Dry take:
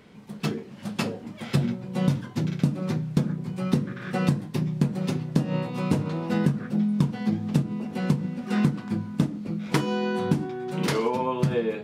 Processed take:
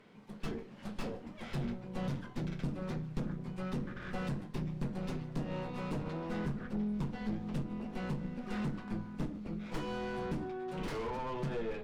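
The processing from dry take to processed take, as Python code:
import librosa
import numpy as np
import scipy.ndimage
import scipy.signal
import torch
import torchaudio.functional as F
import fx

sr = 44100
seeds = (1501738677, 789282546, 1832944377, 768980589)

p1 = fx.highpass(x, sr, hz=1200.0, slope=6)
p2 = fx.tube_stage(p1, sr, drive_db=39.0, bias=0.6)
p3 = fx.tilt_eq(p2, sr, slope=-3.5)
p4 = p3 + fx.echo_single(p3, sr, ms=152, db=-24.0, dry=0)
y = F.gain(torch.from_numpy(p4), 1.0).numpy()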